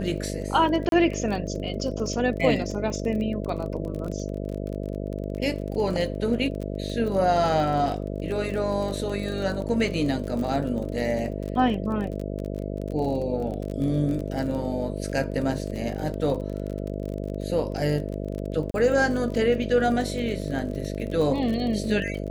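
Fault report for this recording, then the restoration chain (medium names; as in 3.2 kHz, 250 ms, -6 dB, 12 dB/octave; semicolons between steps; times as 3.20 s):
buzz 50 Hz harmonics 13 -31 dBFS
crackle 31 per s -31 dBFS
0.89–0.92 s: dropout 32 ms
18.71–18.74 s: dropout 32 ms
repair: de-click; de-hum 50 Hz, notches 13; interpolate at 0.89 s, 32 ms; interpolate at 18.71 s, 32 ms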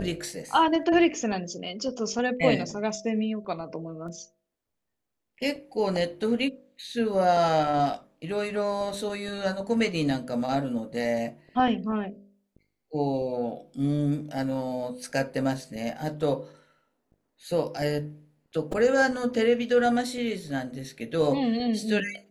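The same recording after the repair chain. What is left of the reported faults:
nothing left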